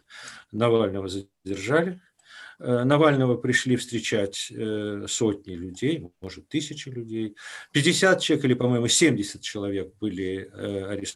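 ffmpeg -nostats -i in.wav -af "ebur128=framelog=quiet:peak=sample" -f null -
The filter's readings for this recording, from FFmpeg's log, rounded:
Integrated loudness:
  I:         -24.7 LUFS
  Threshold: -35.2 LUFS
Loudness range:
  LRA:         6.0 LU
  Threshold: -44.8 LUFS
  LRA low:   -29.1 LUFS
  LRA high:  -23.1 LUFS
Sample peak:
  Peak:       -6.7 dBFS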